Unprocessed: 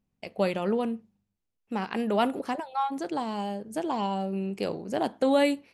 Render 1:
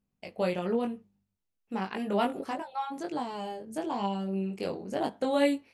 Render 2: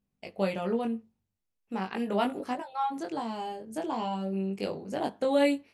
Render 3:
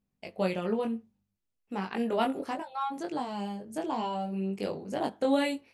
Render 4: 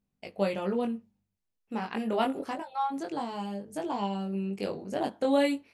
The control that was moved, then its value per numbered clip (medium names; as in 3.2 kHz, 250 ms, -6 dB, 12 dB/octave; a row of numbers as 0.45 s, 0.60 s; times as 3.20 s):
chorus, rate: 0.96 Hz, 0.41 Hz, 0.62 Hz, 0.24 Hz